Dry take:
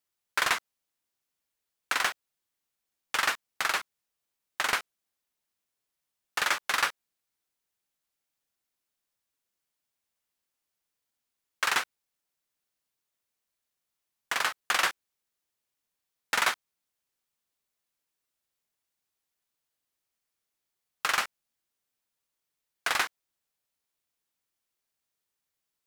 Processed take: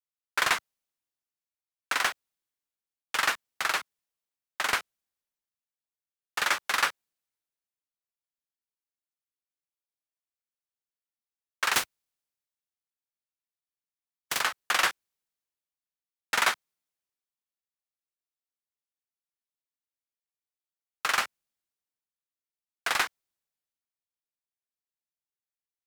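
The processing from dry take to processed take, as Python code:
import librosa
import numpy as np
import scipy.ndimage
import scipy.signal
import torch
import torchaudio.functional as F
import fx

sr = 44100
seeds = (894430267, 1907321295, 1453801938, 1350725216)

y = fx.spec_flatten(x, sr, power=0.53, at=(11.73, 14.39), fade=0.02)
y = fx.band_widen(y, sr, depth_pct=40)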